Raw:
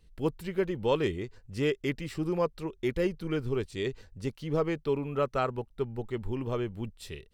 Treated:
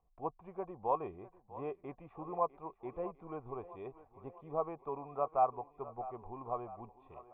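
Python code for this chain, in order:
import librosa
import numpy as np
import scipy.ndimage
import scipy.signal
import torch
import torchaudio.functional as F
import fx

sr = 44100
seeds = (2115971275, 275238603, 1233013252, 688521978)

y = fx.formant_cascade(x, sr, vowel='a')
y = fx.echo_thinned(y, sr, ms=651, feedback_pct=61, hz=230.0, wet_db=-16)
y = y * 10.0 ** (10.0 / 20.0)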